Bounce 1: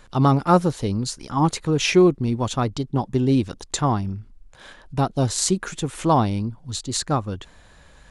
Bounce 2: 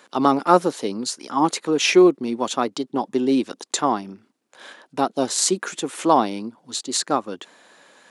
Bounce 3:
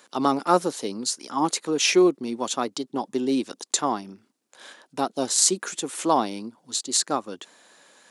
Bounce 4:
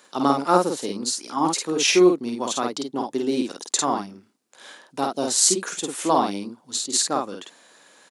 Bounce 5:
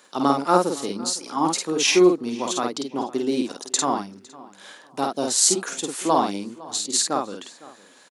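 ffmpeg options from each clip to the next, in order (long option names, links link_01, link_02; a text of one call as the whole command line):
ffmpeg -i in.wav -af "highpass=frequency=250:width=0.5412,highpass=frequency=250:width=1.3066,volume=2.5dB" out.wav
ffmpeg -i in.wav -af "bass=frequency=250:gain=0,treble=frequency=4000:gain=7,volume=-4.5dB" out.wav
ffmpeg -i in.wav -filter_complex "[0:a]asplit=2[link_01][link_02];[link_02]adelay=50,volume=-3dB[link_03];[link_01][link_03]amix=inputs=2:normalize=0" out.wav
ffmpeg -i in.wav -filter_complex "[0:a]asplit=2[link_01][link_02];[link_02]adelay=507,lowpass=frequency=3700:poles=1,volume=-20dB,asplit=2[link_03][link_04];[link_04]adelay=507,lowpass=frequency=3700:poles=1,volume=0.3[link_05];[link_01][link_03][link_05]amix=inputs=3:normalize=0" out.wav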